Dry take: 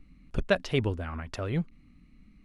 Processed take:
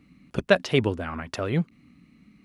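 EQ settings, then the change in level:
high-pass filter 130 Hz 12 dB per octave
+6.0 dB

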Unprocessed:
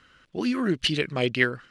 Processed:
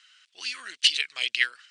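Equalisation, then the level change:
flat-topped band-pass 5,600 Hz, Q 0.63
elliptic low-pass filter 9,200 Hz, stop band 40 dB
high-shelf EQ 7,200 Hz +7 dB
+5.5 dB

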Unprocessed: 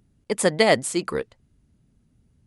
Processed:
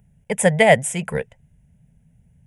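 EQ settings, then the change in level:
parametric band 160 Hz +9 dB 0.51 octaves
phaser with its sweep stopped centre 1,200 Hz, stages 6
+6.0 dB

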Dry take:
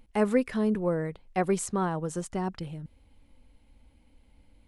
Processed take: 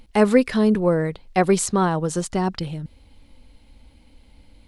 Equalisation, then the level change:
parametric band 4,300 Hz +7 dB 0.87 octaves
+8.5 dB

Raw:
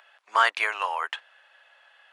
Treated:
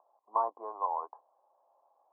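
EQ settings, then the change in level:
Chebyshev low-pass with heavy ripple 1,100 Hz, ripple 3 dB
high-frequency loss of the air 400 metres
0.0 dB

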